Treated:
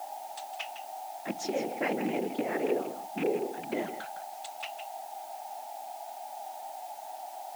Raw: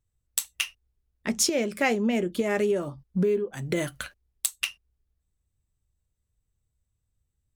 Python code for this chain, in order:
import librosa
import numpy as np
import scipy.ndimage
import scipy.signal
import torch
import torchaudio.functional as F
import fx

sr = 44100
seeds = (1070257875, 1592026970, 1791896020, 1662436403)

y = fx.rattle_buzz(x, sr, strikes_db=-29.0, level_db=-18.0)
y = scipy.signal.sosfilt(scipy.signal.butter(2, 5300.0, 'lowpass', fs=sr, output='sos'), y)
y = fx.tilt_eq(y, sr, slope=-3.0)
y = y + 10.0 ** (-30.0 / 20.0) * np.sin(2.0 * np.pi * 770.0 * np.arange(len(y)) / sr)
y = fx.low_shelf(y, sr, hz=380.0, db=-9.0)
y = y + 10.0 ** (-11.0 / 20.0) * np.pad(y, (int(159 * sr / 1000.0), 0))[:len(y)]
y = fx.whisperise(y, sr, seeds[0])
y = fx.quant_dither(y, sr, seeds[1], bits=8, dither='triangular')
y = scipy.signal.sosfilt(scipy.signal.butter(4, 220.0, 'highpass', fs=sr, output='sos'), y)
y = y * librosa.db_to_amplitude(-5.0)